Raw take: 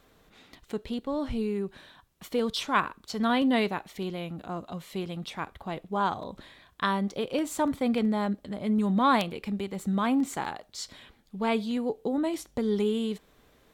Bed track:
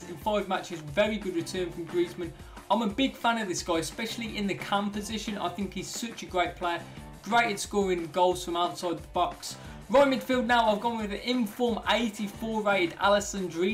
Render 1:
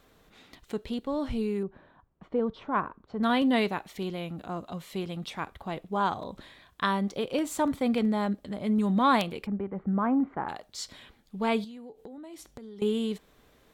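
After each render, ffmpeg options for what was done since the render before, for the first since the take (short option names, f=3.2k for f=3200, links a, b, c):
-filter_complex "[0:a]asettb=1/sr,asplit=3[a][b][c];[a]atrim=end=1.634[d];[b]atrim=start=1.63:end=3.23,asetpts=PTS-STARTPTS,afade=t=in:d=0.004:c=qsin,afade=t=out:st=1.596:d=0.004:c=qsin,lowpass=1.1k[e];[c]atrim=start=3.226[f];[d][e]acrossfade=d=0.004:c1=hsin:c2=qsin[g];[g][f]acrossfade=d=0.004:c1=qsin:c2=hsin,asplit=3[h][i][j];[h]afade=t=out:st=9.45:d=0.02[k];[i]lowpass=f=1.6k:w=0.5412,lowpass=f=1.6k:w=1.3066,afade=t=in:st=9.45:d=0.02,afade=t=out:st=10.48:d=0.02[l];[j]afade=t=in:st=10.48:d=0.02[m];[k][l][m]amix=inputs=3:normalize=0,asettb=1/sr,asplit=3[n][o][p];[n]atrim=end=11.644[q];[o]atrim=start=11.64:end=12.82,asetpts=PTS-STARTPTS,afade=t=in:d=0.004:c=qsin,afade=t=out:st=1.176:d=0.004:c=qsin,acompressor=threshold=-41dB:ratio=12:attack=3.2:release=140:knee=1:detection=peak[r];[p]atrim=start=12.816[s];[q][r]acrossfade=d=0.004:c1=hsin:c2=qsin[t];[t][s]acrossfade=d=0.004:c1=qsin:c2=hsin"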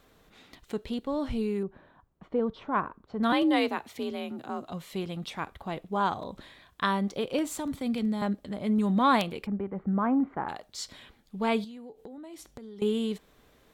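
-filter_complex "[0:a]asettb=1/sr,asplit=3[a][b][c];[a]atrim=end=3.324[d];[b]atrim=start=3.32:end=4.67,asetpts=PTS-STARTPTS,afade=t=in:d=0.004:c=qsin,afade=t=out:st=1.346:d=0.004:c=qsin,afreqshift=50[e];[c]atrim=start=4.666[f];[d][e]acrossfade=d=0.004:c1=hsin:c2=qsin[g];[g][f]acrossfade=d=0.004:c1=qsin:c2=hsin,asettb=1/sr,asplit=3[h][i][j];[h]atrim=end=7.564[k];[i]atrim=start=7.56:end=8.22,asetpts=PTS-STARTPTS,afade=t=in:d=0.004:c=qsin,afade=t=out:st=0.656:d=0.004:c=qsin,acrossover=split=250|3000[l][m][n];[m]acompressor=threshold=-42dB:ratio=2:attack=3.2:release=140:knee=2.83:detection=peak[o];[l][o][n]amix=inputs=3:normalize=0[p];[j]atrim=start=8.216[q];[k][p]acrossfade=d=0.004:c1=hsin:c2=qsin[r];[r][q]acrossfade=d=0.004:c1=qsin:c2=hsin"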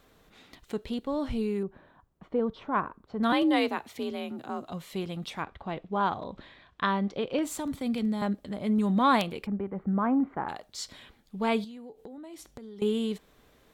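-filter_complex "[0:a]asettb=1/sr,asplit=3[a][b][c];[a]atrim=end=5.424[d];[b]atrim=start=5.42:end=7.43,asetpts=PTS-STARTPTS,afade=t=in:d=0.004:c=qsin,afade=t=out:st=2.006:d=0.004:c=qsin,lowpass=3.9k[e];[c]atrim=start=7.426[f];[d][e]acrossfade=d=0.004:c1=hsin:c2=qsin[g];[g][f]acrossfade=d=0.004:c1=qsin:c2=hsin"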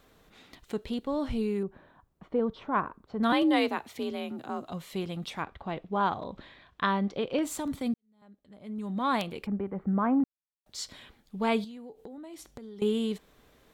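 -filter_complex "[0:a]asplit=4[a][b][c][d];[a]atrim=end=7.94,asetpts=PTS-STARTPTS,afade=t=out:st=7.936:d=0.004:c=hsin[e];[b]atrim=start=7.94:end=10.24,asetpts=PTS-STARTPTS,afade=t=in:d=1.57:c=qua,afade=t=out:st=2.296:d=0.004:c=hsin[f];[c]atrim=start=10.24:end=10.66,asetpts=PTS-STARTPTS,volume=0[g];[d]atrim=start=10.66,asetpts=PTS-STARTPTS,afade=t=in:d=0.004:c=hsin[h];[e][f][g][h]concat=n=4:v=0:a=1"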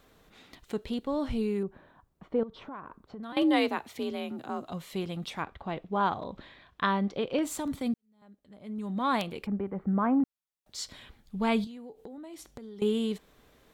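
-filter_complex "[0:a]asettb=1/sr,asplit=3[a][b][c];[a]atrim=end=2.434[d];[b]atrim=start=2.43:end=3.37,asetpts=PTS-STARTPTS,afade=t=in:d=0.004:c=qsin,afade=t=out:st=0.936:d=0.004:c=qsin,acompressor=threshold=-38dB:ratio=8:attack=3.2:release=140:knee=1:detection=peak[e];[c]atrim=start=3.366[f];[d][e]acrossfade=d=0.004:c1=hsin:c2=qsin[g];[g][f]acrossfade=d=0.004:c1=qsin:c2=hsin,asettb=1/sr,asplit=3[h][i][j];[h]atrim=end=10.814[k];[i]atrim=start=10.81:end=11.67,asetpts=PTS-STARTPTS,afade=t=in:d=0.004:c=qsin,afade=t=out:st=0.856:d=0.004:c=qsin,asubboost=boost=11:cutoff=180[l];[j]atrim=start=11.666[m];[k][l]acrossfade=d=0.004:c1=hsin:c2=qsin[n];[n][m]acrossfade=d=0.004:c1=qsin:c2=hsin"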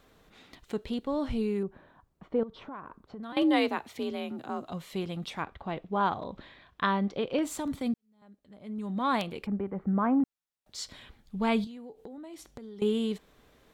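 -af "highshelf=f=8.8k:g=-4"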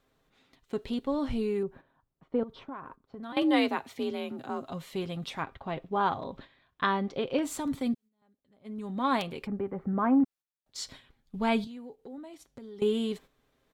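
-af "aecho=1:1:7.5:0.34,agate=range=-11dB:threshold=-47dB:ratio=16:detection=peak"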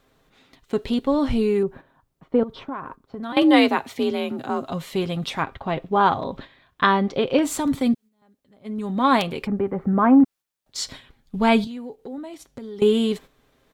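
-af "volume=9.5dB"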